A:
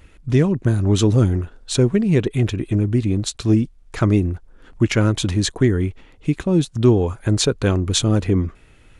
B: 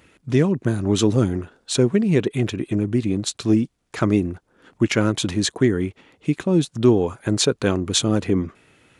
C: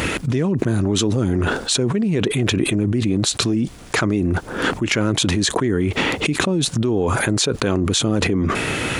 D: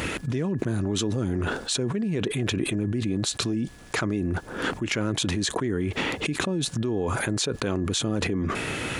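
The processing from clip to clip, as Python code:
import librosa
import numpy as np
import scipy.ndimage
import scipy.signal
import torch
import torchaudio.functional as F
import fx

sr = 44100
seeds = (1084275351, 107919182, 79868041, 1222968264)

y1 = scipy.signal.sosfilt(scipy.signal.butter(2, 150.0, 'highpass', fs=sr, output='sos'), x)
y2 = fx.env_flatten(y1, sr, amount_pct=100)
y2 = y2 * 10.0 ** (-7.5 / 20.0)
y3 = y2 + 10.0 ** (-47.0 / 20.0) * np.sin(2.0 * np.pi * 1700.0 * np.arange(len(y2)) / sr)
y3 = y3 * 10.0 ** (-7.5 / 20.0)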